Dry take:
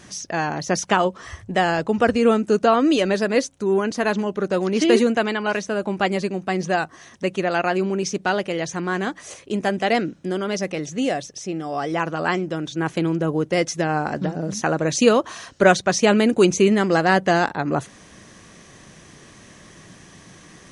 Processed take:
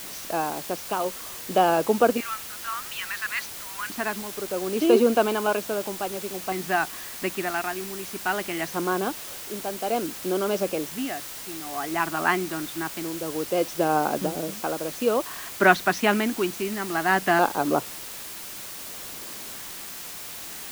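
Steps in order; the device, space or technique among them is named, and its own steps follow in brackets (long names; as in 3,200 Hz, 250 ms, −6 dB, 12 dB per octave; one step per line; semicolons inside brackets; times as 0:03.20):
0:02.20–0:03.90: Butterworth high-pass 1,100 Hz
shortwave radio (band-pass filter 280–2,700 Hz; amplitude tremolo 0.57 Hz, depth 68%; auto-filter notch square 0.23 Hz 510–1,900 Hz; white noise bed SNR 11 dB)
level +2 dB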